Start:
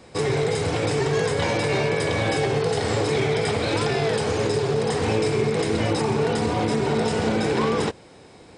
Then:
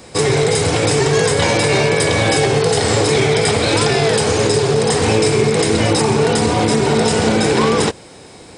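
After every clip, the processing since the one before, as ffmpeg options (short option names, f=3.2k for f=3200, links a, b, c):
-af "highshelf=f=6k:g=11.5,volume=7.5dB"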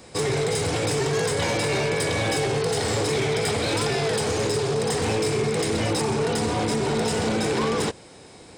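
-af "asoftclip=type=tanh:threshold=-10.5dB,volume=-7dB"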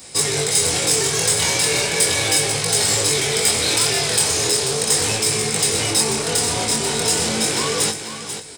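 -af "aecho=1:1:488|976|1464:0.335|0.0703|0.0148,flanger=delay=19:depth=6.9:speed=0.37,crystalizer=i=6:c=0,volume=1dB"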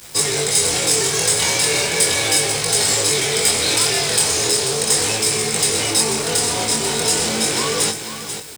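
-filter_complex "[0:a]acrossover=split=190[a][b];[a]volume=34.5dB,asoftclip=hard,volume=-34.5dB[c];[b]acrusher=bits=5:mix=0:aa=0.000001[d];[c][d]amix=inputs=2:normalize=0,volume=1dB"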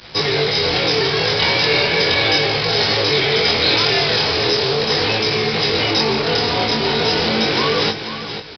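-af "aresample=11025,aresample=44100,volume=4.5dB"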